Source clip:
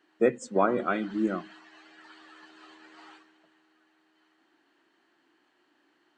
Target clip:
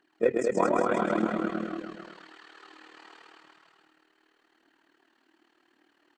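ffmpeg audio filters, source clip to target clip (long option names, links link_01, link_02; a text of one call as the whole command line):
ffmpeg -i in.wav -filter_complex "[0:a]asoftclip=type=hard:threshold=-11.5dB,asplit=2[link_01][link_02];[link_02]aecho=0:1:129:0.708[link_03];[link_01][link_03]amix=inputs=2:normalize=0,aphaser=in_gain=1:out_gain=1:delay=4.3:decay=0.42:speed=0.86:type=triangular,asplit=2[link_04][link_05];[link_05]aecho=0:1:220|396|536.8|649.4|739.6:0.631|0.398|0.251|0.158|0.1[link_06];[link_04][link_06]amix=inputs=2:normalize=0,tremolo=f=38:d=0.75" out.wav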